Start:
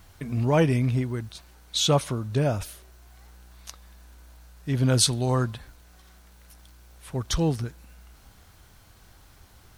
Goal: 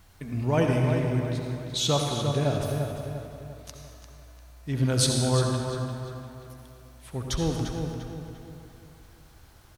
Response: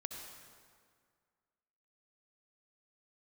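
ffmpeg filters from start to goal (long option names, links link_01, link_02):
-filter_complex "[0:a]asplit=2[link_01][link_02];[link_02]adelay=347,lowpass=frequency=4000:poles=1,volume=-7dB,asplit=2[link_03][link_04];[link_04]adelay=347,lowpass=frequency=4000:poles=1,volume=0.45,asplit=2[link_05][link_06];[link_06]adelay=347,lowpass=frequency=4000:poles=1,volume=0.45,asplit=2[link_07][link_08];[link_08]adelay=347,lowpass=frequency=4000:poles=1,volume=0.45,asplit=2[link_09][link_10];[link_10]adelay=347,lowpass=frequency=4000:poles=1,volume=0.45[link_11];[link_01][link_03][link_05][link_07][link_09][link_11]amix=inputs=6:normalize=0[link_12];[1:a]atrim=start_sample=2205[link_13];[link_12][link_13]afir=irnorm=-1:irlink=0"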